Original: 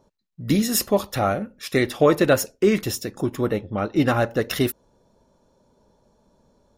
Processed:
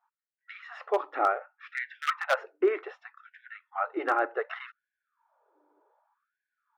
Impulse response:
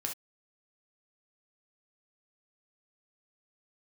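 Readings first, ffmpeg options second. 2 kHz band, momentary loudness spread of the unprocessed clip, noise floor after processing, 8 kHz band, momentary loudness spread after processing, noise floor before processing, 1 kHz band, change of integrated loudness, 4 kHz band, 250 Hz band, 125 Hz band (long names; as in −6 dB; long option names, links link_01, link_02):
−4.0 dB, 9 LU, below −85 dBFS, below −25 dB, 20 LU, −66 dBFS, −2.0 dB, −8.0 dB, −15.0 dB, −17.5 dB, below −40 dB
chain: -af "adynamicequalizer=threshold=0.0141:dfrequency=1000:dqfactor=2.4:tfrequency=1000:tqfactor=2.4:attack=5:release=100:ratio=0.375:range=1.5:mode=cutabove:tftype=bell,aeval=exprs='val(0)+0.00251*(sin(2*PI*60*n/s)+sin(2*PI*2*60*n/s)/2+sin(2*PI*3*60*n/s)/3+sin(2*PI*4*60*n/s)/4+sin(2*PI*5*60*n/s)/5)':channel_layout=same,highpass=frequency=210:width=0.5412,highpass=frequency=210:width=1.3066,equalizer=frequency=540:width_type=q:width=4:gain=-6,equalizer=frequency=820:width_type=q:width=4:gain=4,equalizer=frequency=1300:width_type=q:width=4:gain=7,lowpass=frequency=2100:width=0.5412,lowpass=frequency=2100:width=1.3066,aeval=exprs='0.335*(abs(mod(val(0)/0.335+3,4)-2)-1)':channel_layout=same,afftfilt=real='re*gte(b*sr/1024,270*pow(1500/270,0.5+0.5*sin(2*PI*0.66*pts/sr)))':imag='im*gte(b*sr/1024,270*pow(1500/270,0.5+0.5*sin(2*PI*0.66*pts/sr)))':win_size=1024:overlap=0.75,volume=-4.5dB"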